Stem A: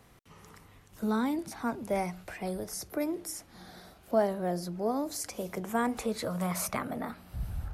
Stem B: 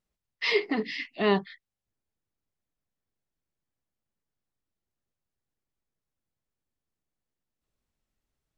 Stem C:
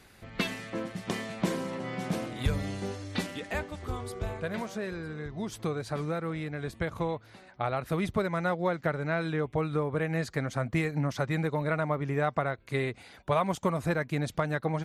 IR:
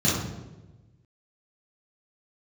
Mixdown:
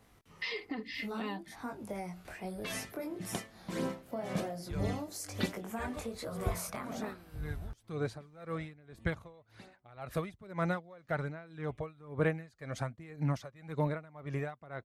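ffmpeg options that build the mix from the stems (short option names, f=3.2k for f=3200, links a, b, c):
-filter_complex "[0:a]flanger=delay=18.5:depth=5.3:speed=1.1,volume=-1.5dB[a];[1:a]aecho=1:1:3.9:0.65,volume=-3dB[b];[2:a]aphaser=in_gain=1:out_gain=1:delay=1.8:decay=0.38:speed=1.2:type=sinusoidal,aeval=exprs='val(0)*pow(10,-24*(0.5-0.5*cos(2*PI*1.9*n/s))/20)':c=same,adelay=2250,volume=-2.5dB[c];[a][b]amix=inputs=2:normalize=0,acompressor=threshold=-36dB:ratio=6,volume=0dB[d];[c][d]amix=inputs=2:normalize=0"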